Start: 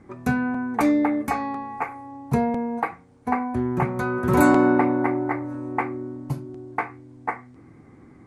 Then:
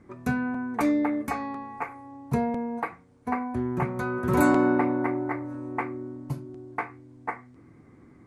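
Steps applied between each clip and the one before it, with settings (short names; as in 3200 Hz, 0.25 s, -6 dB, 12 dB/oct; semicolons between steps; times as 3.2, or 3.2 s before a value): notch 800 Hz, Q 12; gain -4 dB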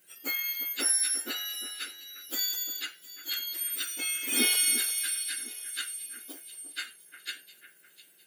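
spectrum mirrored in octaves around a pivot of 1800 Hz; echo with dull and thin repeats by turns 0.353 s, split 2300 Hz, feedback 56%, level -11.5 dB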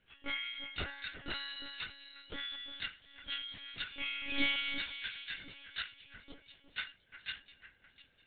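monotone LPC vocoder at 8 kHz 280 Hz; gain -2.5 dB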